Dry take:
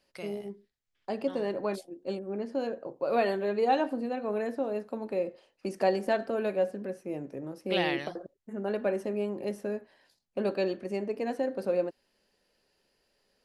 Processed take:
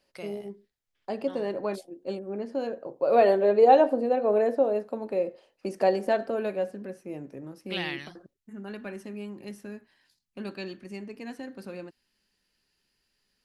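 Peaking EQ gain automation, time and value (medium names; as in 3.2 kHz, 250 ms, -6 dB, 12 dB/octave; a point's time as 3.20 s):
peaking EQ 560 Hz 1.3 oct
2.87 s +1.5 dB
3.31 s +11.5 dB
4.52 s +11.5 dB
4.99 s +3.5 dB
6.25 s +3.5 dB
6.73 s -3.5 dB
7.32 s -3.5 dB
8.05 s -15 dB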